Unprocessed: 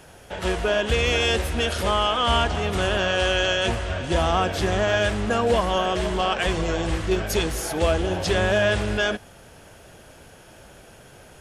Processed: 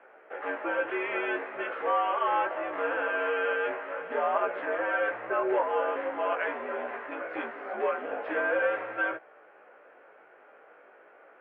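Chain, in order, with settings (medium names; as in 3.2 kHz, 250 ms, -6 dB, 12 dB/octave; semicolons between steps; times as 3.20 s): mistuned SSB -91 Hz 550–2200 Hz; chorus 0.43 Hz, delay 15.5 ms, depth 3.6 ms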